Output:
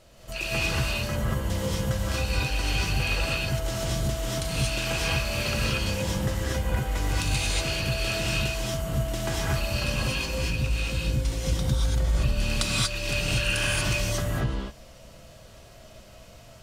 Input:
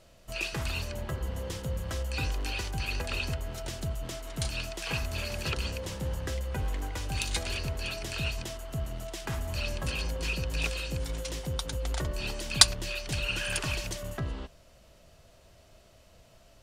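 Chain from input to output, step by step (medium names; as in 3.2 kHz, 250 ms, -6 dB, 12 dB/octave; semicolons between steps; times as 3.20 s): 10.25–12.40 s: bass shelf 210 Hz +9 dB; compression 6:1, threshold -31 dBFS, peak gain reduction 18.5 dB; gated-style reverb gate 260 ms rising, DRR -6 dB; trim +2.5 dB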